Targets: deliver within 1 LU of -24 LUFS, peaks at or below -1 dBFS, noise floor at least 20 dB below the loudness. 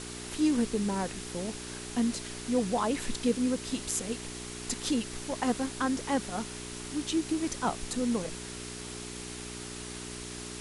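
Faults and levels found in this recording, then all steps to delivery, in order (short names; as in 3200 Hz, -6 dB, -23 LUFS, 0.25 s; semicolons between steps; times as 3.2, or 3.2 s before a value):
hum 60 Hz; harmonics up to 420 Hz; hum level -42 dBFS; noise floor -41 dBFS; noise floor target -53 dBFS; loudness -32.5 LUFS; peak -12.5 dBFS; loudness target -24.0 LUFS
-> de-hum 60 Hz, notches 7; denoiser 12 dB, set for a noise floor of -41 dBFS; gain +8.5 dB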